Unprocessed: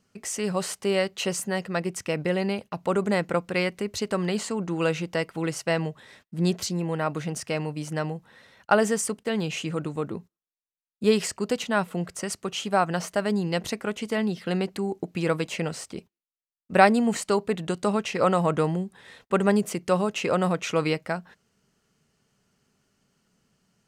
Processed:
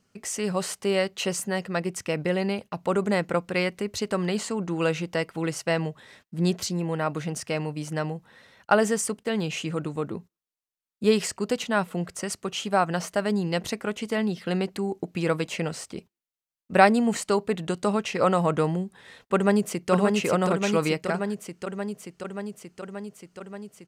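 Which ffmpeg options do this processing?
ffmpeg -i in.wav -filter_complex "[0:a]asplit=2[link_01][link_02];[link_02]afade=type=in:start_time=19.34:duration=0.01,afade=type=out:start_time=19.91:duration=0.01,aecho=0:1:580|1160|1740|2320|2900|3480|4060|4640|5220|5800|6380|6960:0.707946|0.530959|0.39822|0.298665|0.223998|0.167999|0.125999|0.0944994|0.0708745|0.0531559|0.0398669|0.0299002[link_03];[link_01][link_03]amix=inputs=2:normalize=0" out.wav

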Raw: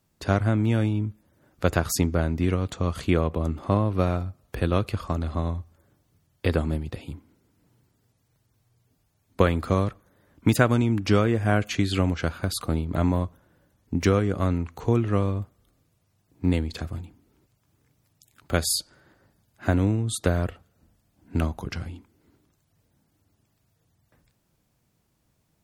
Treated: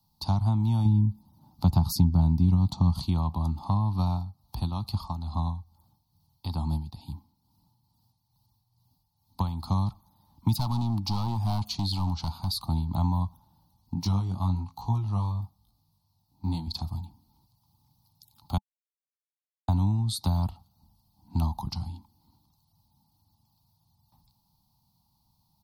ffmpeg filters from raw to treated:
ffmpeg -i in.wav -filter_complex "[0:a]asettb=1/sr,asplit=3[link_01][link_02][link_03];[link_01]atrim=end=0.854[link_04];[link_02]atrim=start=0.85:end=3.02,asetpts=PTS-STARTPTS,afade=type=in:duration=0.004:curve=qsin,afade=type=out:start_time=2.166:duration=0.004:curve=qsin,equalizer=frequency=210:width_type=o:width=2.6:gain=9[link_05];[link_03]atrim=start=3.016[link_06];[link_04][link_05]acrossfade=duration=0.004:curve1=hsin:curve2=qsin[link_07];[link_07][link_06]acrossfade=duration=0.004:curve1=qsin:curve2=hsin,asettb=1/sr,asplit=3[link_08][link_09][link_10];[link_08]atrim=end=4.104[link_11];[link_09]atrim=start=4.1:end=9.74,asetpts=PTS-STARTPTS,afade=type=in:duration=0.004:curve=qsin,afade=type=out:start_time=5.636:duration=0.004:curve=qsin,tremolo=f=2.3:d=0.55[link_12];[link_10]atrim=start=9.736[link_13];[link_11][link_12]acrossfade=duration=0.004:curve1=hsin:curve2=qsin[link_14];[link_14][link_13]acrossfade=duration=0.004:curve1=qsin:curve2=hsin,asettb=1/sr,asplit=3[link_15][link_16][link_17];[link_15]atrim=end=10.564[link_18];[link_16]atrim=start=10.56:end=12.61,asetpts=PTS-STARTPTS,afade=type=in:duration=0.004:curve=qsin,afade=type=out:start_time=2.046:duration=0.004:curve=qsin,volume=21dB,asoftclip=hard,volume=-21dB[link_19];[link_17]atrim=start=12.606[link_20];[link_18][link_19]acrossfade=duration=0.004:curve1=hsin:curve2=qsin[link_21];[link_21][link_20]acrossfade=duration=0.004:curve1=qsin:curve2=hsin,asettb=1/sr,asplit=3[link_22][link_23][link_24];[link_22]atrim=end=13.944[link_25];[link_23]atrim=start=13.94:end=16.67,asetpts=PTS-STARTPTS,afade=type=in:duration=0.004:curve=qsin,afade=type=out:start_time=2.726:duration=0.004:curve=qsin,flanger=delay=18:depth=4.6:speed=1.1[link_26];[link_24]atrim=start=16.666[link_27];[link_25][link_26]acrossfade=duration=0.004:curve1=hsin:curve2=qsin[link_28];[link_28][link_27]acrossfade=duration=0.004:curve1=qsin:curve2=hsin,asplit=3[link_29][link_30][link_31];[link_29]atrim=end=18.58,asetpts=PTS-STARTPTS,afade=type=out:start_time=18.576:duration=0.004:curve=hsin[link_32];[link_30]atrim=start=18.58:end=19.68,asetpts=PTS-STARTPTS,volume=0[link_33];[link_31]atrim=start=19.68,asetpts=PTS-STARTPTS,afade=type=in:duration=0.004:curve=hsin[link_34];[link_32][link_33][link_34]concat=n=3:v=0:a=1,firequalizer=gain_entry='entry(200,0);entry(470,-27);entry(860,10);entry(1600,-28);entry(4300,9);entry(7100,-9);entry(12000,4)':delay=0.05:min_phase=1,acrossover=split=160[link_35][link_36];[link_36]acompressor=threshold=-29dB:ratio=6[link_37];[link_35][link_37]amix=inputs=2:normalize=0" out.wav

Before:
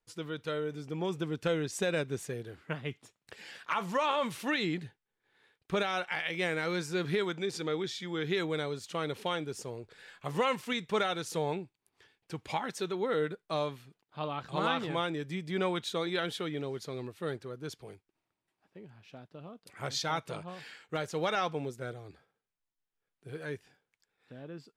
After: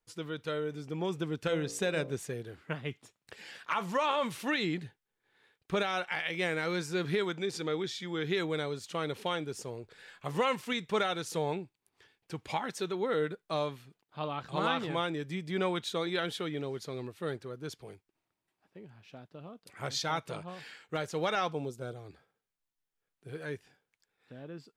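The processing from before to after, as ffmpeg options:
ffmpeg -i in.wav -filter_complex "[0:a]asettb=1/sr,asplit=3[link_01][link_02][link_03];[link_01]atrim=end=1.454[link_04];[link_02]atrim=start=1.45:end=2.13,asetpts=PTS-STARTPTS,afade=type=in:duration=0.004:curve=qsin,afade=type=out:start_time=0.676:duration=0.004:curve=qsin,bandreject=frequency=57.21:width_type=h:width=4,bandreject=frequency=114.42:width_type=h:width=4,bandreject=frequency=171.63:width_type=h:width=4,bandreject=frequency=228.84:width_type=h:width=4,bandreject=frequency=286.05:width_type=h:width=4,bandreject=frequency=343.26:width_type=h:width=4,bandreject=frequency=400.47:width_type=h:width=4,bandreject=frequency=457.68:width_type=h:width=4,bandreject=frequency=514.89:width_type=h:width=4,bandreject=frequency=572.1:width_type=h:width=4,bandreject=frequency=629.31:width_type=h:width=4,bandreject=frequency=686.52:width_type=h:width=4,bandreject=frequency=743.73:width_type=h:width=4,bandreject=frequency=800.94:width_type=h:width=4,bandreject=frequency=858.15:width_type=h:width=4,bandreject=frequency=915.36:width_type=h:width=4,bandreject=frequency=972.57:width_type=h:width=4,bandreject=frequency=1029.78:width_type=h:width=4,bandreject=frequency=1086.99:width_type=h:width=4,bandreject=frequency=1144.2:width_type=h:width=4,bandreject=frequency=1201.41:width_type=h:width=4,bandreject=frequency=1258.62:width_type=h:width=4,bandreject=frequency=1315.83:width_type=h:width=4[link_05];[link_03]atrim=start=2.126[link_06];[link_04][link_05]acrossfade=duration=0.004:curve1=hsin:curve2=qsin[link_07];[link_07][link_06]acrossfade=duration=0.004:curve1=qsin:curve2=hsin,asettb=1/sr,asplit=3[link_08][link_09][link_10];[link_08]atrim=end=21.524[link_11];[link_09]atrim=start=21.52:end=21.96,asetpts=PTS-STARTPTS,afade=type=in:duration=0.004:curve=qsin,afade=type=out:start_time=0.436:duration=0.004:curve=qsin,equalizer=frequency=1900:width=2.9:gain=-14[link_12];[link_10]atrim=start=21.956[link_13];[link_11][link_12]acrossfade=duration=0.004:curve1=hsin:curve2=qsin[link_14];[link_14][link_13]acrossfade=duration=0.004:curve1=qsin:curve2=hsin" out.wav

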